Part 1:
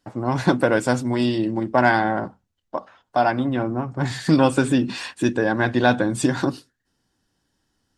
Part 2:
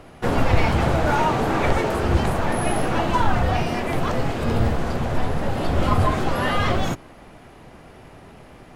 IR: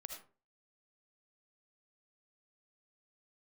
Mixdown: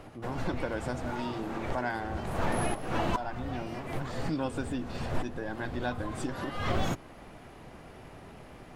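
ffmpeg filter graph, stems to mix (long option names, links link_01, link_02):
-filter_complex "[0:a]volume=-16dB,asplit=2[link_01][link_02];[1:a]volume=-4dB[link_03];[link_02]apad=whole_len=386195[link_04];[link_03][link_04]sidechaincompress=threshold=-55dB:ratio=3:attack=33:release=199[link_05];[link_01][link_05]amix=inputs=2:normalize=0,alimiter=limit=-18dB:level=0:latency=1:release=349"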